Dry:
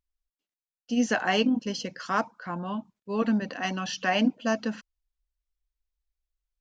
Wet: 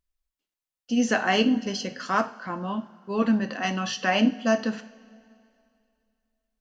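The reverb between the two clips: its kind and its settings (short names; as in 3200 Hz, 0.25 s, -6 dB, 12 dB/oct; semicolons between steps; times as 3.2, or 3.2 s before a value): two-slope reverb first 0.4 s, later 2.5 s, from -18 dB, DRR 8 dB; gain +2 dB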